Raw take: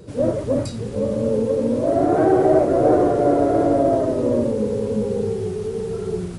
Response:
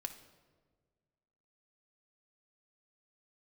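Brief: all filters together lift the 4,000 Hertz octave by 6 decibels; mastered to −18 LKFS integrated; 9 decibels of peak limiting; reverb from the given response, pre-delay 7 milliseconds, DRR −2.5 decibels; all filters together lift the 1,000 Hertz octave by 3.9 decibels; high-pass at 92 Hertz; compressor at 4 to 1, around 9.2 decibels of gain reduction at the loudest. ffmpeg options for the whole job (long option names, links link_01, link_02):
-filter_complex "[0:a]highpass=92,equalizer=frequency=1000:width_type=o:gain=6.5,equalizer=frequency=4000:width_type=o:gain=7,acompressor=threshold=-21dB:ratio=4,alimiter=limit=-21dB:level=0:latency=1,asplit=2[link_01][link_02];[1:a]atrim=start_sample=2205,adelay=7[link_03];[link_02][link_03]afir=irnorm=-1:irlink=0,volume=4.5dB[link_04];[link_01][link_04]amix=inputs=2:normalize=0,volume=6dB"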